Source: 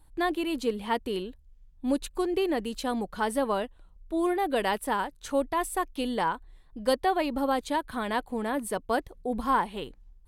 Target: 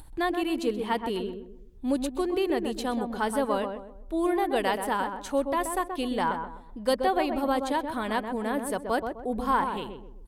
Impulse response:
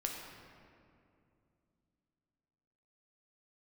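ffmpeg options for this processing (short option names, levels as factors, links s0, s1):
-filter_complex "[0:a]acompressor=mode=upward:threshold=0.0112:ratio=2.5,asplit=2[s0][s1];[s1]adelay=128,lowpass=f=1100:p=1,volume=0.562,asplit=2[s2][s3];[s3]adelay=128,lowpass=f=1100:p=1,volume=0.38,asplit=2[s4][s5];[s5]adelay=128,lowpass=f=1100:p=1,volume=0.38,asplit=2[s6][s7];[s7]adelay=128,lowpass=f=1100:p=1,volume=0.38,asplit=2[s8][s9];[s9]adelay=128,lowpass=f=1100:p=1,volume=0.38[s10];[s2][s4][s6][s8][s10]amix=inputs=5:normalize=0[s11];[s0][s11]amix=inputs=2:normalize=0"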